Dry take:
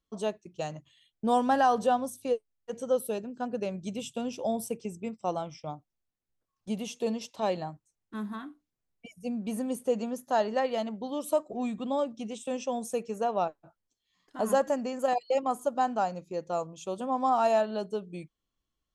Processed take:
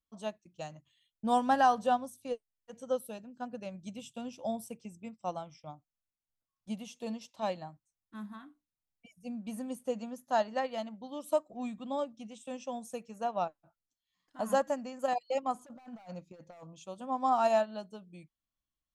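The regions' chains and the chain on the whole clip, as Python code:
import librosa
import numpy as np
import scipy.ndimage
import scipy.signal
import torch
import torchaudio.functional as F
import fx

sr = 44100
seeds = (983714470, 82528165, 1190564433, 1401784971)

y = fx.chain(x, sr, fx.air_absorb(metres=51.0),
    fx.clip_hard(threshold_db=-28.0),
    fx.over_compress(threshold_db=-37.0, ratio=-0.5), at=(15.54, 16.83))
y = fx.peak_eq(y, sr, hz=410.0, db=-12.5, octaves=0.36)
y = fx.upward_expand(y, sr, threshold_db=-39.0, expansion=1.5)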